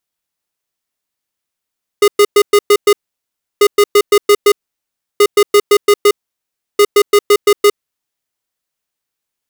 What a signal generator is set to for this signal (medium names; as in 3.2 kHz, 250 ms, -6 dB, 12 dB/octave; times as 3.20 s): beep pattern square 411 Hz, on 0.06 s, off 0.11 s, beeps 6, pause 0.68 s, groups 4, -7 dBFS